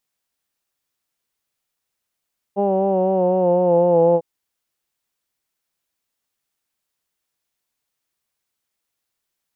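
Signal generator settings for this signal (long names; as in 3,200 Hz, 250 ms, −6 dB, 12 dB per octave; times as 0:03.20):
vowel from formants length 1.65 s, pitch 198 Hz, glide −3 semitones, vibrato 4 Hz, vibrato depth 0.4 semitones, F1 500 Hz, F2 840 Hz, F3 2,800 Hz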